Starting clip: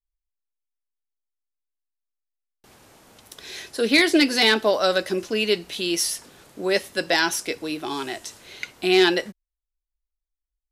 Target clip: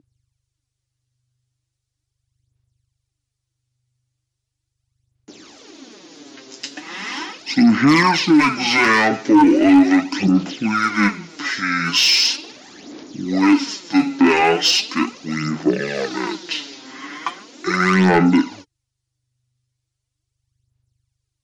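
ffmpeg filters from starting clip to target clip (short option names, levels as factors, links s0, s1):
-af "aeval=exprs='val(0)+0.00251*(sin(2*PI*50*n/s)+sin(2*PI*2*50*n/s)/2+sin(2*PI*3*50*n/s)/3+sin(2*PI*4*50*n/s)/4+sin(2*PI*5*50*n/s)/5)':c=same,highpass=f=590:t=q:w=4.9,aphaser=in_gain=1:out_gain=1:delay=3.8:decay=0.61:speed=0.77:type=sinusoidal,asetrate=22050,aresample=44100,equalizer=f=5500:w=0.63:g=9,acontrast=40,alimiter=level_in=1.41:limit=0.891:release=50:level=0:latency=1,volume=0.531"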